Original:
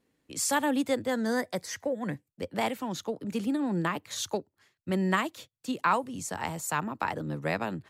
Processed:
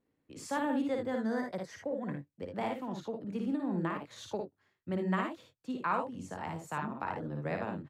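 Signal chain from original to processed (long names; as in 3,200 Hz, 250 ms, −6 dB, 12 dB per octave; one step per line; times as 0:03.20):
low-pass filter 1,400 Hz 6 dB per octave
on a send: ambience of single reflections 55 ms −4 dB, 76 ms −9.5 dB
on the sum: level −5.5 dB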